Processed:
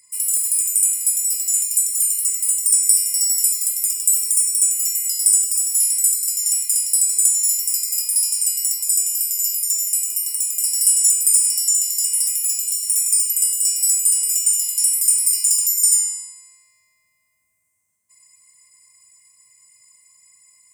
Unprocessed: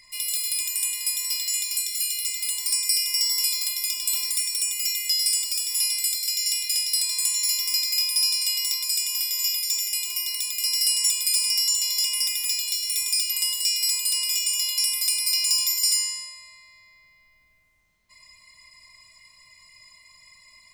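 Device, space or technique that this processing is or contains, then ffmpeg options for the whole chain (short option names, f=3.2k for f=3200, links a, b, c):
budget condenser microphone: -filter_complex "[0:a]highpass=f=81:w=0.5412,highpass=f=81:w=1.3066,highshelf=f=5.8k:t=q:w=3:g=13.5,asettb=1/sr,asplit=3[a][b][c];[a]atrim=end=12.444[d];[b]atrim=start=12.44:end=13.34,asetpts=PTS-STARTPTS,afade=t=in:d=0.004:c=qsin,afade=t=out:st=0.896:d=0.004:c=qsin,highpass=220[e];[c]atrim=start=13.336[f];[d][e]acrossfade=d=0.004:c1=hsin:c2=qsin[g];[g][f]acrossfade=d=0.004:c1=qsin:c2=hsin,volume=-9.5dB"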